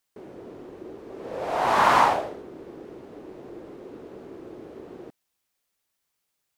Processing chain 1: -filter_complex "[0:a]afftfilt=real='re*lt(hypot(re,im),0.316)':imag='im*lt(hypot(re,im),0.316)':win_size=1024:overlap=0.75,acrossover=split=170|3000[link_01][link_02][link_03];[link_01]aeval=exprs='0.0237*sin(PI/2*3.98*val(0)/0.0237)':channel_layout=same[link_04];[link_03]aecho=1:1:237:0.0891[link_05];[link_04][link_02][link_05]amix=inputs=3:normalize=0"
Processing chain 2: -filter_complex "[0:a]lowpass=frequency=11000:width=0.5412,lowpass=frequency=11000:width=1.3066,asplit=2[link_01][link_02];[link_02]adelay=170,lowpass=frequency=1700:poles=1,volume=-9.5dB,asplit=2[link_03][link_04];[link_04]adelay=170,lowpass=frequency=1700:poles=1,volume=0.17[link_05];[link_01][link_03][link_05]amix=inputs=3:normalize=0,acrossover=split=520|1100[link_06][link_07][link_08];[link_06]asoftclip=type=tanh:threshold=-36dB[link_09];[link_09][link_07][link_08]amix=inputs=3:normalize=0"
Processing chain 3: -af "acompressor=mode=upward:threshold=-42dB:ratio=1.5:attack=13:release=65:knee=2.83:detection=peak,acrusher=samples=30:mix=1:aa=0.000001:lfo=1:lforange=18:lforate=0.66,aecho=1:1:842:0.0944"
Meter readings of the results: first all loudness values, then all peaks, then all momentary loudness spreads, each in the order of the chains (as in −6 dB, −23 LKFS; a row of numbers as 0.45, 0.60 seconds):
−32.5, −22.5, −25.0 LKFS; −13.0, −6.0, −8.0 dBFS; 15, 23, 22 LU